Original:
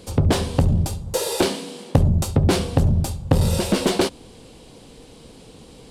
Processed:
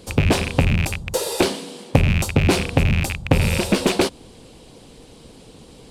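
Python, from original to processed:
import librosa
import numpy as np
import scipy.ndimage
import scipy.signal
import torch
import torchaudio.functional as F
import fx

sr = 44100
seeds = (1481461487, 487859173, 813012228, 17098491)

y = fx.rattle_buzz(x, sr, strikes_db=-24.0, level_db=-13.0)
y = fx.hpss(y, sr, part='percussive', gain_db=4)
y = y * librosa.db_to_amplitude(-2.0)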